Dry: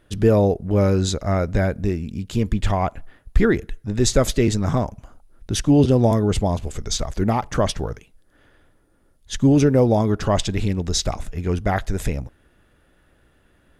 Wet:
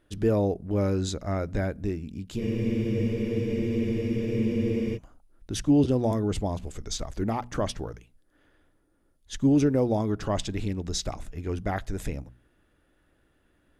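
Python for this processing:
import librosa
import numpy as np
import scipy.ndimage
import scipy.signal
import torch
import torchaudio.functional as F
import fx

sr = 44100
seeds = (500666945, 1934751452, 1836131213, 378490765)

y = fx.peak_eq(x, sr, hz=300.0, db=4.5, octaves=0.45)
y = fx.hum_notches(y, sr, base_hz=60, count=4)
y = fx.spec_freeze(y, sr, seeds[0], at_s=2.41, hold_s=2.54)
y = y * 10.0 ** (-8.5 / 20.0)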